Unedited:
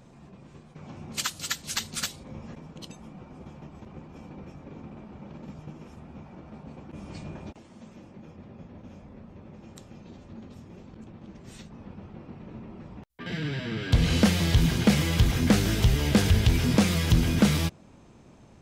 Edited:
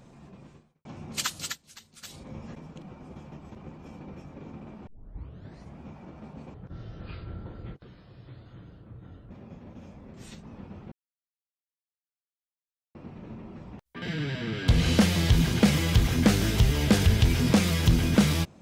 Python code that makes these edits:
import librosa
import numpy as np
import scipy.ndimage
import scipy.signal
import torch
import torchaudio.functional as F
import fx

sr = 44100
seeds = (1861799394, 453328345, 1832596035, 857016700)

y = fx.edit(x, sr, fx.fade_out_span(start_s=0.46, length_s=0.39, curve='qua'),
    fx.fade_down_up(start_s=1.45, length_s=0.71, db=-19.0, fade_s=0.13),
    fx.cut(start_s=2.82, length_s=0.3),
    fx.tape_start(start_s=5.17, length_s=0.92),
    fx.speed_span(start_s=6.84, length_s=1.55, speed=0.56),
    fx.cut(start_s=9.22, length_s=2.19),
    fx.insert_silence(at_s=12.19, length_s=2.03), tone=tone)